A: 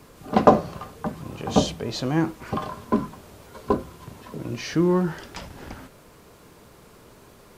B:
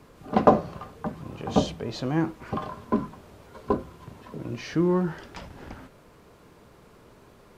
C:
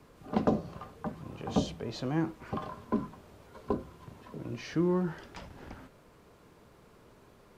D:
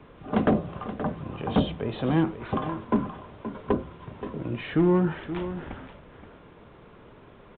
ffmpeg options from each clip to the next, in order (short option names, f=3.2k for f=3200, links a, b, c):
-af "highshelf=f=4.7k:g=-9,volume=-2.5dB"
-filter_complex "[0:a]acrossover=split=430|3000[a][b][c];[b]acompressor=threshold=-28dB:ratio=6[d];[a][d][c]amix=inputs=3:normalize=0,volume=-5dB"
-filter_complex "[0:a]asoftclip=type=hard:threshold=-22.5dB,asplit=2[a][b];[b]aecho=0:1:525:0.266[c];[a][c]amix=inputs=2:normalize=0,aresample=8000,aresample=44100,volume=7.5dB"